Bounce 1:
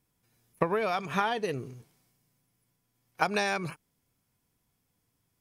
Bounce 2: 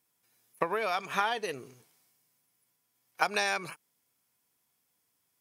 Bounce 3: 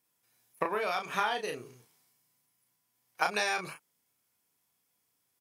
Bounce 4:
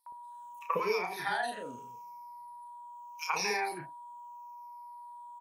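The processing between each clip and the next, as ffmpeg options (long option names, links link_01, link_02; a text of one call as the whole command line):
ffmpeg -i in.wav -af "highpass=frequency=670:poles=1,highshelf=frequency=7600:gain=4,volume=1dB" out.wav
ffmpeg -i in.wav -filter_complex "[0:a]asplit=2[link_01][link_02];[link_02]adelay=33,volume=-5dB[link_03];[link_01][link_03]amix=inputs=2:normalize=0,volume=-2dB" out.wav
ffmpeg -i in.wav -filter_complex "[0:a]afftfilt=real='re*pow(10,17/40*sin(2*PI*(0.78*log(max(b,1)*sr/1024/100)/log(2)-(-0.81)*(pts-256)/sr)))':imag='im*pow(10,17/40*sin(2*PI*(0.78*log(max(b,1)*sr/1024/100)/log(2)-(-0.81)*(pts-256)/sr)))':win_size=1024:overlap=0.75,aeval=exprs='val(0)+0.0141*sin(2*PI*960*n/s)':channel_layout=same,acrossover=split=730|2700[link_01][link_02][link_03];[link_02]adelay=80[link_04];[link_01]adelay=140[link_05];[link_05][link_04][link_03]amix=inputs=3:normalize=0,volume=-3dB" out.wav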